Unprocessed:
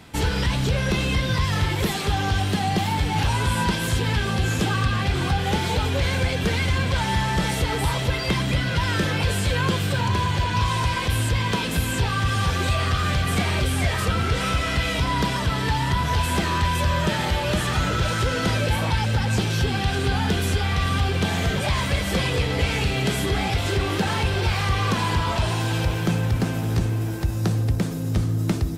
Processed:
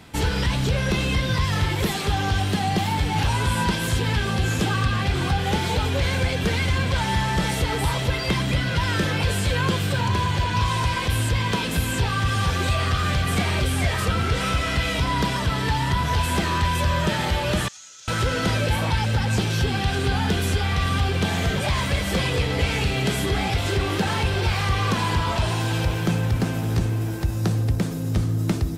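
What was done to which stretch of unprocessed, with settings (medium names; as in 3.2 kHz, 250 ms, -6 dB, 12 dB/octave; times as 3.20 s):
17.68–18.08 s: band-pass filter 6.5 kHz, Q 4.9
21.67–22.28 s: hard clipper -14.5 dBFS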